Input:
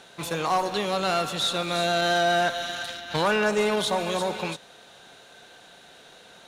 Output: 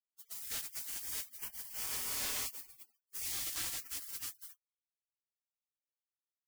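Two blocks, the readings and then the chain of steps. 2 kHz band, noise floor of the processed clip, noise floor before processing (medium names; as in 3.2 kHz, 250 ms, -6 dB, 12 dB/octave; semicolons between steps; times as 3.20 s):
-21.0 dB, under -85 dBFS, -51 dBFS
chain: bit crusher 5-bit; spectral gate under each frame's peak -30 dB weak; trim -2 dB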